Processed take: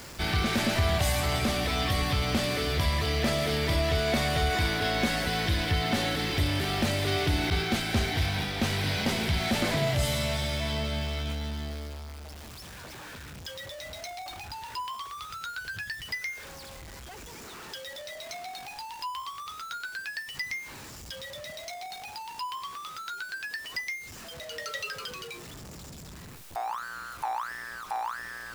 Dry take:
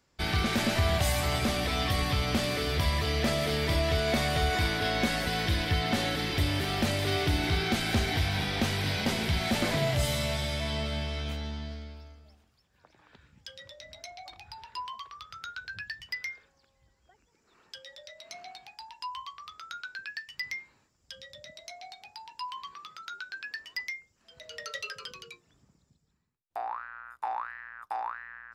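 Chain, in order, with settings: zero-crossing step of -38.5 dBFS; 7.5–8.7 expander -26 dBFS

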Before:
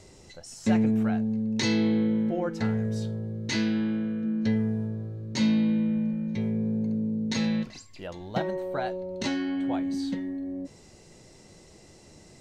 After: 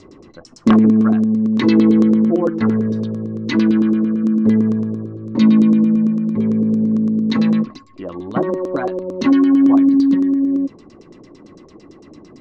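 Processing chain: wrapped overs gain 14 dB; LFO low-pass saw down 8.9 Hz 400–6300 Hz; small resonant body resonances 280/1100 Hz, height 16 dB, ringing for 25 ms; gain +1 dB

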